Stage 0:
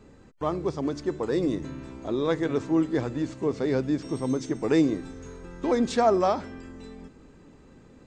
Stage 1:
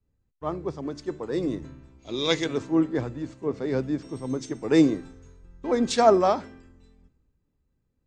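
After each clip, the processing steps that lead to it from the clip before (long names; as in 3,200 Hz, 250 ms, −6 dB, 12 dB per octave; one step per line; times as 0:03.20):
gain on a spectral selection 0:01.99–0:02.44, 2,000–7,100 Hz +9 dB
multiband upward and downward expander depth 100%
level −1.5 dB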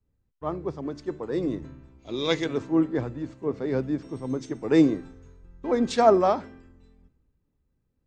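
high-shelf EQ 4,300 Hz −8.5 dB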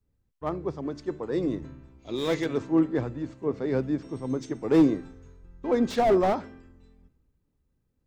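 slew-rate limiting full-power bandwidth 71 Hz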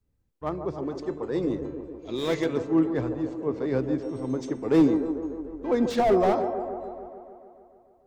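delay with a band-pass on its return 147 ms, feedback 69%, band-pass 540 Hz, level −7 dB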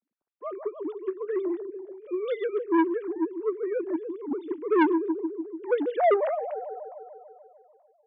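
three sine waves on the formant tracks
saturating transformer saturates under 930 Hz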